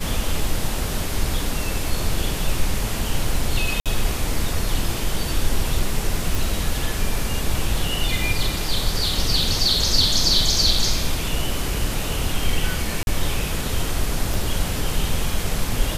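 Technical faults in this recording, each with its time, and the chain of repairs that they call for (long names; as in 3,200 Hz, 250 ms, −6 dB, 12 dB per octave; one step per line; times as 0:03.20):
0:03.80–0:03.86: drop-out 57 ms
0:06.35: click
0:13.03–0:13.07: drop-out 41 ms
0:14.34: click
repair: click removal
repair the gap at 0:03.80, 57 ms
repair the gap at 0:13.03, 41 ms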